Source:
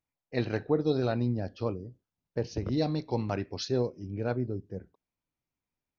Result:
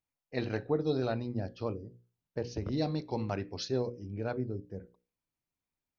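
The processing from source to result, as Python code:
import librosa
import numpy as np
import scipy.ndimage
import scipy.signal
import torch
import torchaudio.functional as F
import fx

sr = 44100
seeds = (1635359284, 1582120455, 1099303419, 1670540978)

y = fx.hum_notches(x, sr, base_hz=60, count=9)
y = y * librosa.db_to_amplitude(-2.5)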